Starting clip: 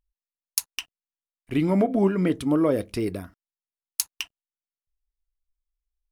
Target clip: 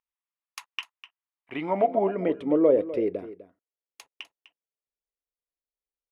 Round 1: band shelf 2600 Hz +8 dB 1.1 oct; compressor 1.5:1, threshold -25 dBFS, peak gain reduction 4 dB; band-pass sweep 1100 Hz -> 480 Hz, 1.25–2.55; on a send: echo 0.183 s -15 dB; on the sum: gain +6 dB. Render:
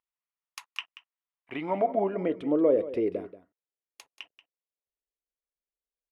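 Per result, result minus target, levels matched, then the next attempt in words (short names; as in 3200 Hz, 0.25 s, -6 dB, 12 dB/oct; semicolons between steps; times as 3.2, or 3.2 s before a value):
echo 68 ms early; compressor: peak gain reduction +4 dB
band shelf 2600 Hz +8 dB 1.1 oct; compressor 1.5:1, threshold -25 dBFS, peak gain reduction 4 dB; band-pass sweep 1100 Hz -> 480 Hz, 1.25–2.55; on a send: echo 0.251 s -15 dB; on the sum: gain +6 dB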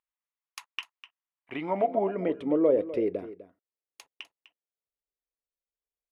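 compressor: peak gain reduction +4 dB
band shelf 2600 Hz +8 dB 1.1 oct; band-pass sweep 1100 Hz -> 480 Hz, 1.25–2.55; on a send: echo 0.251 s -15 dB; on the sum: gain +6 dB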